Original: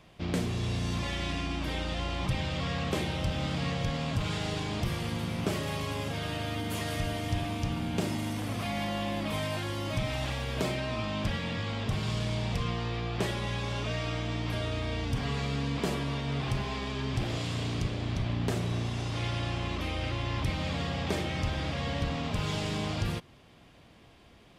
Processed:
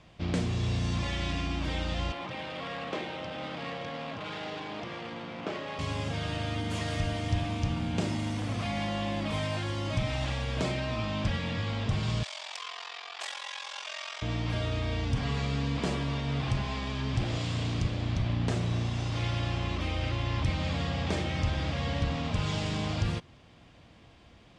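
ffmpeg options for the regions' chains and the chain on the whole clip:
-filter_complex "[0:a]asettb=1/sr,asplit=3[s0][s1][s2];[s0]atrim=end=2.124[s3];[s1]atrim=start=2.12:end=5.79,asetpts=PTS-STARTPTS,afade=t=in:d=0.004:c=qsin,afade=t=out:st=3.666:d=0.004:c=qsin,highpass=330,lowpass=7400,adynamicsmooth=sensitivity=4:basefreq=2700[s4];[s2]atrim=start=5.786[s5];[s3][s4]acrossfade=d=0.004:c1=hsin:c2=qsin[s6];[s6][s5]acrossfade=d=0.004:c1=qsin:c2=hsin,asettb=1/sr,asplit=3[s7][s8][s9];[s7]atrim=end=12.234[s10];[s8]atrim=start=12.23:end=14.22,asetpts=PTS-STARTPTS,afade=t=in:d=0.004:c=qsin,afade=t=out:st=1.986:d=0.004:c=qsin,highpass=f=760:w=0.5412,highpass=f=760:w=1.3066,highshelf=f=4000:g=8,aeval=exprs='val(0)*sin(2*PI*22*n/s)':c=same[s11];[s9]atrim=start=14.216[s12];[s10][s11]acrossfade=d=0.004:c1=hsin:c2=qsin[s13];[s13][s12]acrossfade=d=0.004:c1=qsin:c2=hsin,lowpass=f=8200:w=0.5412,lowpass=f=8200:w=1.3066,equalizer=f=81:w=1.1:g=3.5,bandreject=f=400:w=13"

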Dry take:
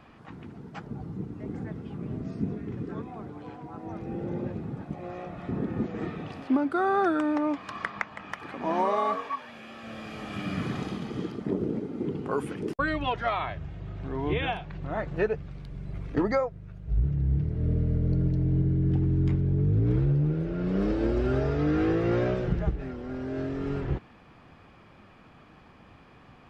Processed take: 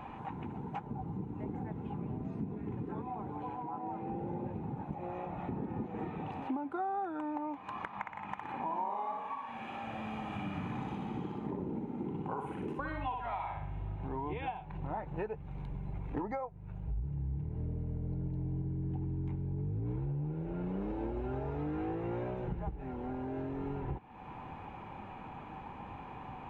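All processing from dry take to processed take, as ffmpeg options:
-filter_complex "[0:a]asettb=1/sr,asplit=3[s0][s1][s2];[s0]atrim=end=3.624[s3];[s1]atrim=start=3.62:end=4.1,asetpts=PTS-STARTPTS,afade=t=in:d=0.004:c=qsin,afade=t=out:st=0.476:d=0.004:c=qsin,highpass=150,lowpass=4000,asoftclip=type=hard:threshold=0.0266[s4];[s2]atrim=start=4.096[s5];[s3][s4]acrossfade=d=0.004:c1=hsin:c2=qsin[s6];[s6][s5]acrossfade=d=0.004:c1=qsin:c2=hsin,asettb=1/sr,asplit=3[s7][s8][s9];[s7]atrim=end=7.874[s10];[s8]atrim=start=7.87:end=13.96,asetpts=PTS-STARTPTS,afade=t=in:d=0.004:c=qsin,afade=t=out:st=6.086:d=0.004:c=qsin,equalizer=f=440:t=o:w=0.78:g=-4,aecho=1:1:60|120|180|240|300|360:0.631|0.284|0.128|0.0575|0.0259|0.0116,atrim=end_sample=268569[s11];[s9]atrim=start=13.956[s12];[s10][s11]acrossfade=d=0.004:c1=hsin:c2=qsin[s13];[s13][s12]acrossfade=d=0.004:c1=qsin:c2=hsin,superequalizer=9b=3.55:12b=1.58:14b=0.398,acompressor=threshold=0.00708:ratio=4,highshelf=f=2400:g=-11.5,volume=1.88"

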